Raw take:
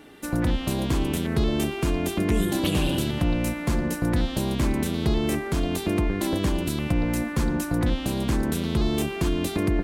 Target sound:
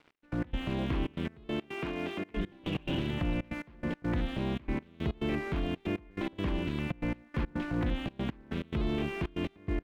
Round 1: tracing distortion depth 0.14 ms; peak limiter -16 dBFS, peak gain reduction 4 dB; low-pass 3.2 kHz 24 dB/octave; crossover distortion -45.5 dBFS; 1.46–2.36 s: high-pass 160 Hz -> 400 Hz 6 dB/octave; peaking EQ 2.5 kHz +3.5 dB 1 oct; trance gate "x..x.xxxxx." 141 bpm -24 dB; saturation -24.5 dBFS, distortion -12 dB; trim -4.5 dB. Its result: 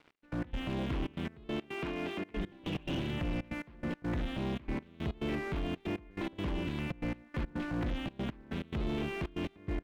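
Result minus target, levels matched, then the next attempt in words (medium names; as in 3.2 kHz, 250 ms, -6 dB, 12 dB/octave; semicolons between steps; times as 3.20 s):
saturation: distortion +12 dB
tracing distortion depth 0.14 ms; peak limiter -16 dBFS, peak gain reduction 4 dB; low-pass 3.2 kHz 24 dB/octave; crossover distortion -45.5 dBFS; 1.46–2.36 s: high-pass 160 Hz -> 400 Hz 6 dB/octave; peaking EQ 2.5 kHz +3.5 dB 1 oct; trance gate "x..x.xxxxx." 141 bpm -24 dB; saturation -16 dBFS, distortion -24 dB; trim -4.5 dB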